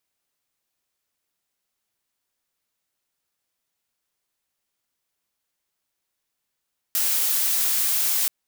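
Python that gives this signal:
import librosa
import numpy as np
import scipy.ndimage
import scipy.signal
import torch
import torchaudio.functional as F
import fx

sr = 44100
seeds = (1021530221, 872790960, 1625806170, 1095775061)

y = fx.noise_colour(sr, seeds[0], length_s=1.33, colour='blue', level_db=-22.0)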